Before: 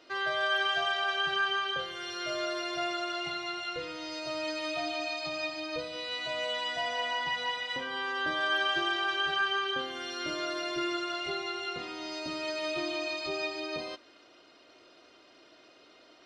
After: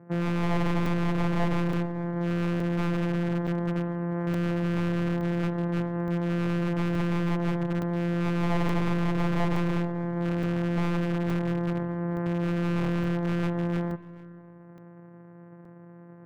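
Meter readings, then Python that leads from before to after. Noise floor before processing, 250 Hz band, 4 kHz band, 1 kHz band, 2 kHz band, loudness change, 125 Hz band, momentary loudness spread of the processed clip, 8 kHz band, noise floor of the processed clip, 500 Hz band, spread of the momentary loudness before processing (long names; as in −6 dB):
−59 dBFS, +15.0 dB, −13.5 dB, −1.5 dB, −7.0 dB, +3.5 dB, +31.0 dB, 3 LU, can't be measured, −48 dBFS, +3.5 dB, 8 LU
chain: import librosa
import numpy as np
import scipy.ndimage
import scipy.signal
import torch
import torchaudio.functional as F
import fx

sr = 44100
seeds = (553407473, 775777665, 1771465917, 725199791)

p1 = np.r_[np.sort(x[:len(x) // 256 * 256].reshape(-1, 256), axis=1).ravel(), x[len(x) // 256 * 256:]]
p2 = scipy.signal.sosfilt(scipy.signal.ellip(3, 1.0, 40, [120.0, 1800.0], 'bandpass', fs=sr, output='sos'), p1)
p3 = fx.tilt_shelf(p2, sr, db=7.0, hz=830.0)
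p4 = fx.rider(p3, sr, range_db=4, speed_s=2.0)
p5 = p3 + F.gain(torch.from_numpy(p4), -3.0).numpy()
p6 = 10.0 ** (-19.5 / 20.0) * (np.abs((p5 / 10.0 ** (-19.5 / 20.0) + 3.0) % 4.0 - 2.0) - 1.0)
p7 = p6 + fx.echo_single(p6, sr, ms=436, db=-22.0, dry=0)
p8 = fx.rev_spring(p7, sr, rt60_s=1.6, pass_ms=(48,), chirp_ms=40, drr_db=14.5)
y = fx.buffer_crackle(p8, sr, first_s=0.86, period_s=0.87, block=128, kind='zero')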